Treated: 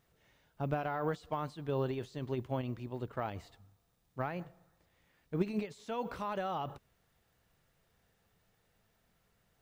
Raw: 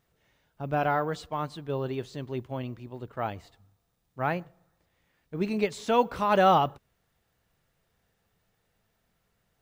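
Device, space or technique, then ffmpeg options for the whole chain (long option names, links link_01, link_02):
de-esser from a sidechain: -filter_complex "[0:a]asplit=2[link_01][link_02];[link_02]highpass=4900,apad=whole_len=424130[link_03];[link_01][link_03]sidechaincompress=threshold=-59dB:ratio=8:attack=4.7:release=60"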